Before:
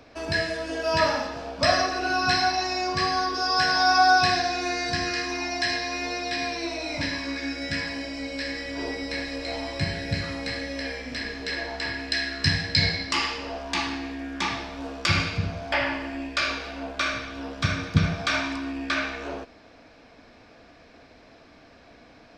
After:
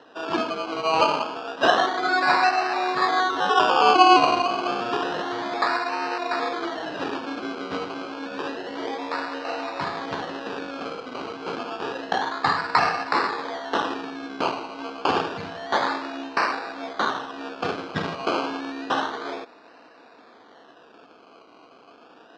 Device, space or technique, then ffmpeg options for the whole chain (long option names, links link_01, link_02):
circuit-bent sampling toy: -filter_complex "[0:a]asettb=1/sr,asplit=3[link_01][link_02][link_03];[link_01]atrim=end=13.334[link_04];[link_02]atrim=start=13.33:end=14.5,asetpts=PTS-STARTPTS,afade=type=in:duration=0.004:curve=qsin,afade=type=out:start_time=1.166:duration=0.004:curve=qsin,equalizer=frequency=1800:width_type=o:width=0.62:gain=5[link_05];[link_03]atrim=start=14.496[link_06];[link_04][link_05]acrossfade=duration=0.004:curve1=hsin:curve2=qsin[link_07];[link_07][link_06]acrossfade=duration=0.004:curve1=qsin:curve2=hsin,acrusher=samples=19:mix=1:aa=0.000001:lfo=1:lforange=11.4:lforate=0.29,highpass=400,equalizer=frequency=590:width_type=q:width=4:gain=-7,equalizer=frequency=2100:width_type=q:width=4:gain=-8,equalizer=frequency=3400:width_type=q:width=4:gain=-4,lowpass=frequency=4300:width=0.5412,lowpass=frequency=4300:width=1.3066,volume=6dB"